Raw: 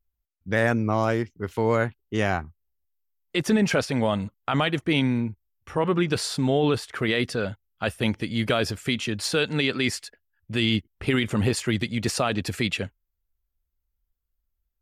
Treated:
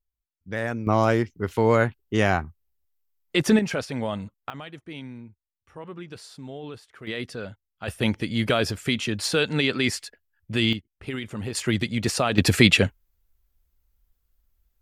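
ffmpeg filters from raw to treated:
-af "asetnsamples=n=441:p=0,asendcmd='0.87 volume volume 3dB;3.59 volume volume -5dB;4.5 volume volume -16dB;7.07 volume volume -7.5dB;7.88 volume volume 1dB;10.73 volume volume -9dB;11.55 volume volume 1dB;12.38 volume volume 10dB',volume=-6.5dB"

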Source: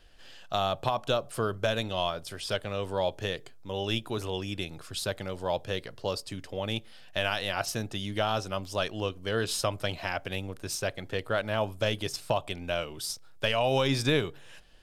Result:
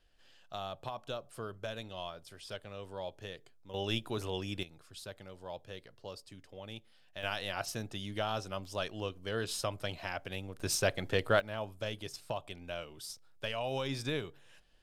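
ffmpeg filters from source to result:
-af "asetnsamples=n=441:p=0,asendcmd='3.74 volume volume -4dB;4.63 volume volume -14dB;7.23 volume volume -6.5dB;10.6 volume volume 1.5dB;11.4 volume volume -10dB',volume=-12.5dB"

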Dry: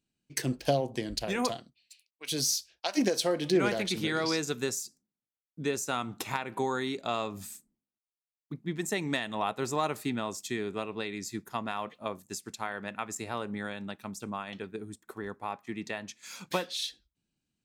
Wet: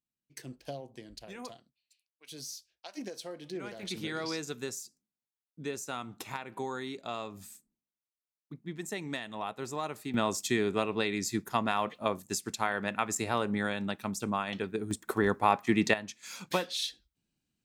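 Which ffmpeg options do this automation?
-af "asetnsamples=n=441:p=0,asendcmd='3.83 volume volume -6dB;10.14 volume volume 5dB;14.91 volume volume 11.5dB;15.94 volume volume 0.5dB',volume=-14dB"

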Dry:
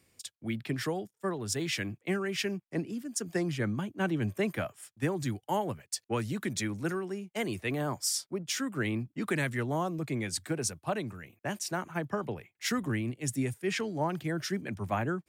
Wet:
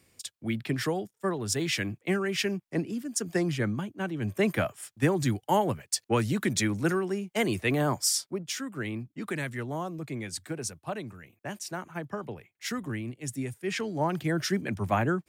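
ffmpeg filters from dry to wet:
-af "volume=21dB,afade=t=out:st=3.54:d=0.6:silence=0.421697,afade=t=in:st=4.14:d=0.36:silence=0.316228,afade=t=out:st=7.92:d=0.69:silence=0.375837,afade=t=in:st=13.51:d=0.83:silence=0.421697"

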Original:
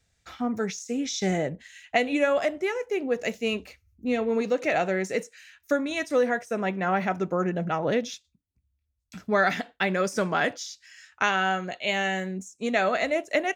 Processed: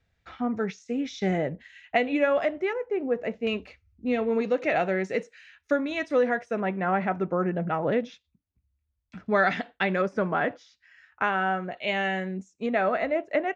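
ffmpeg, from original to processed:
-af "asetnsamples=n=441:p=0,asendcmd='2.73 lowpass f 1500;3.47 lowpass f 3400;6.6 lowpass f 2200;9.26 lowpass f 3600;10.02 lowpass f 1700;11.77 lowpass f 2900;12.66 lowpass f 1800',lowpass=2.8k"

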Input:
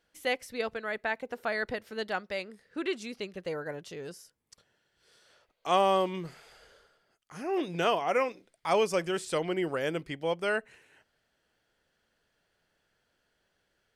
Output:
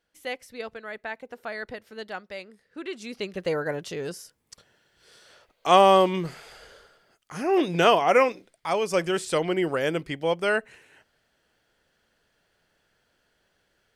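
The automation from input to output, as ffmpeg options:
-af "volume=15.5dB,afade=t=in:st=2.91:d=0.53:silence=0.266073,afade=t=out:st=8.29:d=0.51:silence=0.316228,afade=t=in:st=8.8:d=0.18:silence=0.446684"

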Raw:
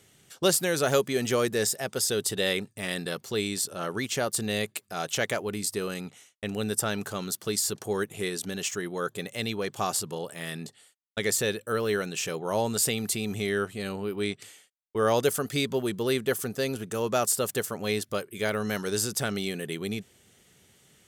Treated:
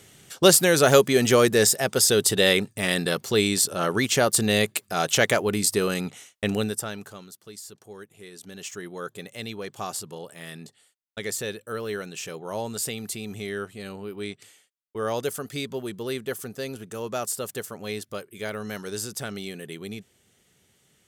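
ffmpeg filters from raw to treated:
-af "volume=17.5dB,afade=t=out:st=6.52:d=0.23:silence=0.316228,afade=t=out:st=6.75:d=0.57:silence=0.266073,afade=t=in:st=8.27:d=0.56:silence=0.316228"

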